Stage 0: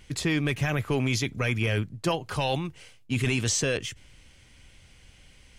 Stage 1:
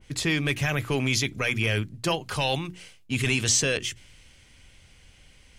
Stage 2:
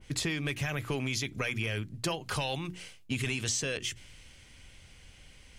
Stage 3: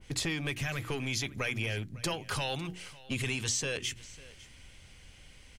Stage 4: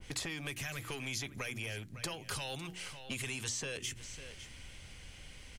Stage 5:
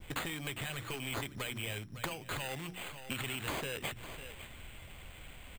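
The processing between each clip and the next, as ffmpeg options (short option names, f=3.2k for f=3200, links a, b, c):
-af "bandreject=f=60:t=h:w=6,bandreject=f=120:t=h:w=6,bandreject=f=180:t=h:w=6,bandreject=f=240:t=h:w=6,bandreject=f=300:t=h:w=6,bandreject=f=360:t=h:w=6,adynamicequalizer=threshold=0.00708:dfrequency=1700:dqfactor=0.7:tfrequency=1700:tqfactor=0.7:attack=5:release=100:ratio=0.375:range=2.5:mode=boostabove:tftype=highshelf"
-af "acompressor=threshold=-29dB:ratio=6"
-filter_complex "[0:a]acrossover=split=1400[a][b];[a]aeval=exprs='clip(val(0),-1,0.0224)':c=same[c];[c][b]amix=inputs=2:normalize=0,aecho=1:1:551:0.0944"
-filter_complex "[0:a]acrossover=split=560|1900|6200[a][b][c][d];[a]acompressor=threshold=-48dB:ratio=4[e];[b]acompressor=threshold=-51dB:ratio=4[f];[c]acompressor=threshold=-47dB:ratio=4[g];[d]acompressor=threshold=-45dB:ratio=4[h];[e][f][g][h]amix=inputs=4:normalize=0,volume=3dB"
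-af "acrusher=samples=8:mix=1:aa=0.000001,volume=1dB"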